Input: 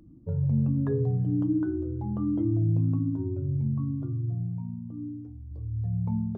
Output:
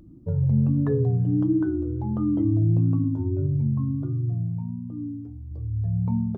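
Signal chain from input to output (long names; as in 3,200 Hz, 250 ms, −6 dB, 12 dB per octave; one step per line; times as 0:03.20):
pitch vibrato 1.5 Hz 56 cents
0:03.02–0:03.47: double-tracking delay 21 ms −7.5 dB
level +4 dB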